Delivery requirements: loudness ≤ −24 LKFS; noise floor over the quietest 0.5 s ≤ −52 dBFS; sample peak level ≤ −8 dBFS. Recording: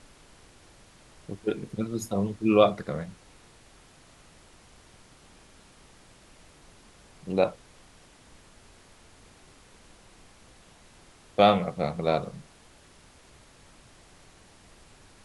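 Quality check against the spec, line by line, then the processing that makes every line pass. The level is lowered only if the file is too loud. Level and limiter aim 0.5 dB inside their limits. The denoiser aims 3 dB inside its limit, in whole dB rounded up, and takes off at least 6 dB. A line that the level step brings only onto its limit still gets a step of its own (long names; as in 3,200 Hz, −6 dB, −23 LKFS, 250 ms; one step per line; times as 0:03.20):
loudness −26.5 LKFS: in spec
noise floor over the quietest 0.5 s −55 dBFS: in spec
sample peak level −5.5 dBFS: out of spec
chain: brickwall limiter −8.5 dBFS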